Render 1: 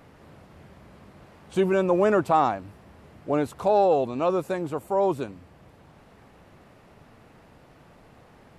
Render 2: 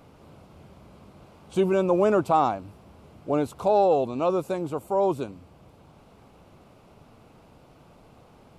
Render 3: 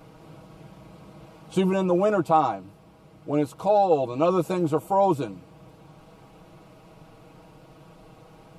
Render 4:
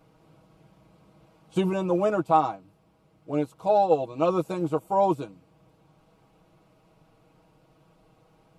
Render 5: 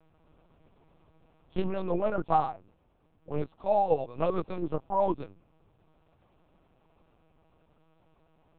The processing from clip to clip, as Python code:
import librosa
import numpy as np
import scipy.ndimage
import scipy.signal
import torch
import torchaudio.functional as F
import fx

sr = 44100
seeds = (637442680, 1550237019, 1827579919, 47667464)

y1 = fx.peak_eq(x, sr, hz=1800.0, db=-12.0, octaves=0.36)
y2 = y1 + 0.77 * np.pad(y1, (int(6.3 * sr / 1000.0), 0))[:len(y1)]
y2 = fx.rider(y2, sr, range_db=3, speed_s=0.5)
y3 = fx.upward_expand(y2, sr, threshold_db=-37.0, expansion=1.5)
y4 = fx.lpc_vocoder(y3, sr, seeds[0], excitation='pitch_kept', order=8)
y4 = y4 * librosa.db_to_amplitude(-4.5)